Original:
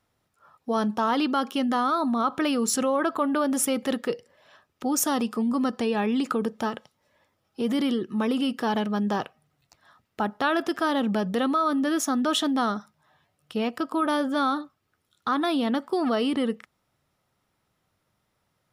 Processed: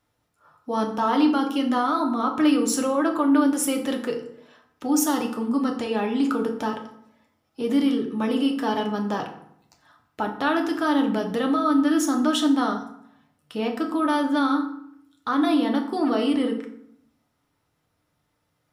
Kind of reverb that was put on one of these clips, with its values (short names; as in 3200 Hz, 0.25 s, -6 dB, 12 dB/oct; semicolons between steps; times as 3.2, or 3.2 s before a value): FDN reverb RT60 0.69 s, low-frequency decay 1.3×, high-frequency decay 0.65×, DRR 2 dB; gain -1.5 dB